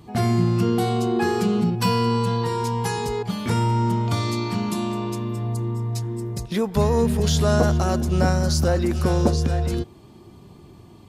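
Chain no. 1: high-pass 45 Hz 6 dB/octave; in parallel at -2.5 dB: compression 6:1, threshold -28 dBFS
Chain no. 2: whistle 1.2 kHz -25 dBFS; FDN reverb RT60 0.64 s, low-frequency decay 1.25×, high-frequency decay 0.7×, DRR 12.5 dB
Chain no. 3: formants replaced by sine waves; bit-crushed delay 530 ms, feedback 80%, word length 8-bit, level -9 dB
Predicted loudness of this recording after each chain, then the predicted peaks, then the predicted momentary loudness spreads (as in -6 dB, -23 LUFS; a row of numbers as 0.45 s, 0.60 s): -20.5 LUFS, -20.5 LUFS, -21.0 LUFS; -4.0 dBFS, -4.5 dBFS, -6.0 dBFS; 6 LU, 6 LU, 8 LU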